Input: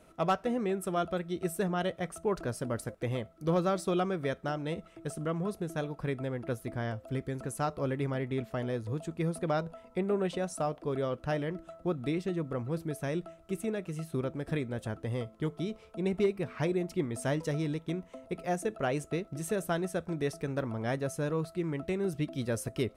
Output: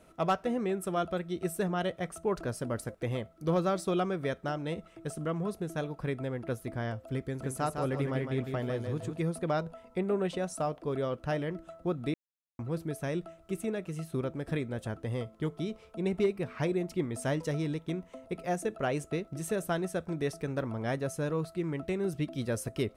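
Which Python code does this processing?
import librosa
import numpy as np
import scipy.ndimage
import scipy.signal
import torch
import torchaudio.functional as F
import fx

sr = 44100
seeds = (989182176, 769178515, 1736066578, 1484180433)

y = fx.echo_feedback(x, sr, ms=156, feedback_pct=30, wet_db=-6.0, at=(7.39, 9.19), fade=0.02)
y = fx.edit(y, sr, fx.silence(start_s=12.14, length_s=0.45), tone=tone)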